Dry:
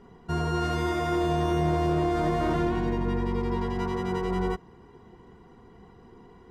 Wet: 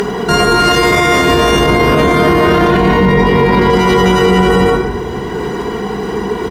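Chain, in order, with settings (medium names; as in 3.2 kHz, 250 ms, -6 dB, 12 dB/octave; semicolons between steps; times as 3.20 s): octave divider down 2 oct, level +3 dB; 1.66–3.68 s: peaking EQ 7.6 kHz -8 dB 1.1 oct; delay 153 ms -10.5 dB; reverberation RT60 1.0 s, pre-delay 5 ms, DRR -1 dB; upward compressor, threshold -32 dBFS; high-pass 160 Hz 6 dB/octave; tilt EQ +2 dB/octave; small resonant body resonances 420/1600 Hz, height 7 dB; loudness maximiser +27.5 dB; trim -1 dB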